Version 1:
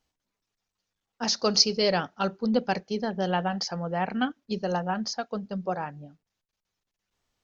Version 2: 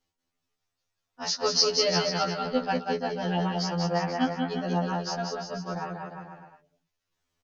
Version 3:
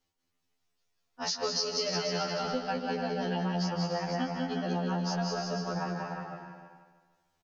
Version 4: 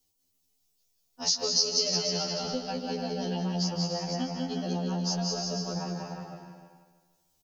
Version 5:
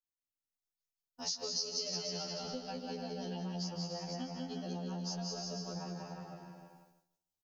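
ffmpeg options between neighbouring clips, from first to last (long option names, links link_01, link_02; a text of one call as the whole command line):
ffmpeg -i in.wav -filter_complex "[0:a]asplit=2[link_01][link_02];[link_02]aecho=0:1:190|351.5|488.8|605.5|704.6:0.631|0.398|0.251|0.158|0.1[link_03];[link_01][link_03]amix=inputs=2:normalize=0,afftfilt=real='re*2*eq(mod(b,4),0)':imag='im*2*eq(mod(b,4),0)':win_size=2048:overlap=0.75" out.wav
ffmpeg -i in.wav -filter_complex "[0:a]asplit=2[link_01][link_02];[link_02]aecho=0:1:212.8|285.7:0.316|0.316[link_03];[link_01][link_03]amix=inputs=2:normalize=0,acompressor=threshold=-29dB:ratio=5,asplit=2[link_04][link_05];[link_05]aecho=0:1:157|314|471|628|785|942:0.266|0.138|0.0719|0.0374|0.0195|0.0101[link_06];[link_04][link_06]amix=inputs=2:normalize=0" out.wav
ffmpeg -i in.wav -filter_complex "[0:a]acrossover=split=700[link_01][link_02];[link_02]crystalizer=i=2.5:c=0[link_03];[link_01][link_03]amix=inputs=2:normalize=0,equalizer=frequency=1600:width_type=o:width=1.7:gain=-11.5,volume=1.5dB" out.wav
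ffmpeg -i in.wav -af "agate=range=-33dB:threshold=-59dB:ratio=3:detection=peak,acompressor=threshold=-47dB:ratio=1.5,volume=-2.5dB" out.wav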